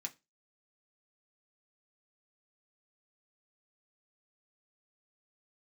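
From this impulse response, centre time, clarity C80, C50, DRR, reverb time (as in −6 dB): 6 ms, 28.0 dB, 20.5 dB, 1.5 dB, non-exponential decay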